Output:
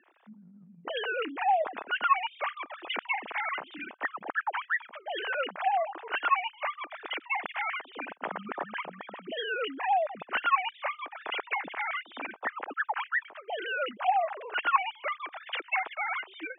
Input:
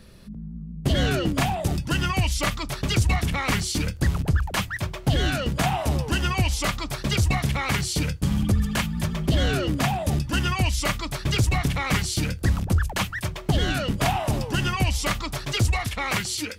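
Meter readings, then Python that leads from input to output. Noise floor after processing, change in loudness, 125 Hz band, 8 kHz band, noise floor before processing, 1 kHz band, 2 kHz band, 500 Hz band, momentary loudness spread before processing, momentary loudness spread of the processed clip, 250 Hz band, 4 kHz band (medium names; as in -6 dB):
-58 dBFS, -7.0 dB, under -35 dB, under -40 dB, -37 dBFS, +1.0 dB, -2.5 dB, -5.0 dB, 4 LU, 10 LU, -20.5 dB, -10.5 dB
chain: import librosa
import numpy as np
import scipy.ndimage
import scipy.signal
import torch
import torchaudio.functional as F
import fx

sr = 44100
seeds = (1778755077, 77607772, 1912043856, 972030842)

y = fx.sine_speech(x, sr)
y = fx.bandpass_edges(y, sr, low_hz=680.0, high_hz=2200.0)
y = y * 10.0 ** (-5.0 / 20.0)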